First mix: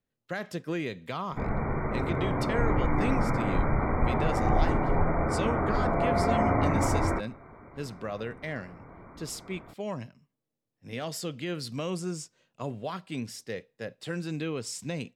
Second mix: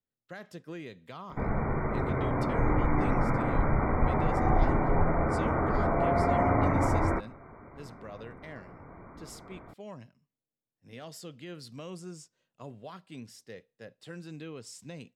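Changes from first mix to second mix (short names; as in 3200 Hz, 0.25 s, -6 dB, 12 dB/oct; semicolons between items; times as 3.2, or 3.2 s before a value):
speech -9.5 dB; master: add bell 2300 Hz -2.5 dB 0.24 oct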